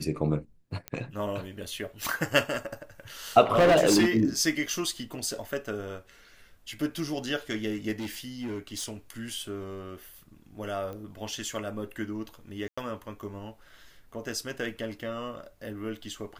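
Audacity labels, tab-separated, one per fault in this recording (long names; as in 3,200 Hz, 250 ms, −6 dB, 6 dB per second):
0.880000	0.880000	click −17 dBFS
3.520000	4.090000	clipping −16.5 dBFS
4.660000	4.660000	drop-out 4.1 ms
7.990000	8.930000	clipping −30.5 dBFS
10.930000	10.930000	click −28 dBFS
12.680000	12.780000	drop-out 95 ms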